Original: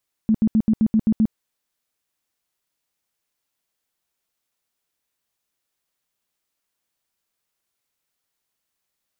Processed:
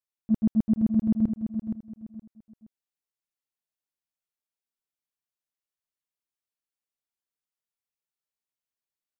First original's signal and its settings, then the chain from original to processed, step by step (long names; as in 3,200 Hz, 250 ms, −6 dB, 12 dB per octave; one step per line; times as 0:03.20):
tone bursts 219 Hz, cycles 12, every 0.13 s, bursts 8, −13 dBFS
noise gate −17 dBFS, range −17 dB
on a send: repeating echo 470 ms, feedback 28%, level −7.5 dB